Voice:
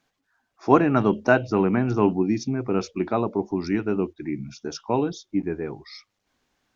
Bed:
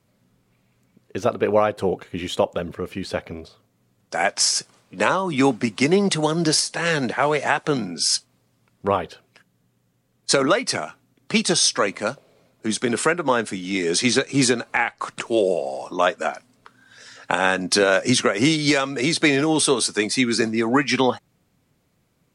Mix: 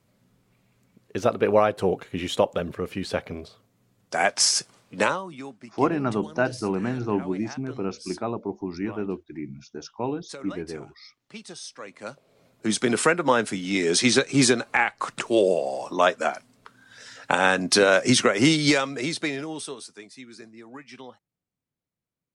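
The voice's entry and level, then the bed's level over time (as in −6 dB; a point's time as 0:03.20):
5.10 s, −5.5 dB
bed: 0:05.02 −1 dB
0:05.44 −21.5 dB
0:11.75 −21.5 dB
0:12.46 −0.5 dB
0:18.67 −0.5 dB
0:20.12 −24 dB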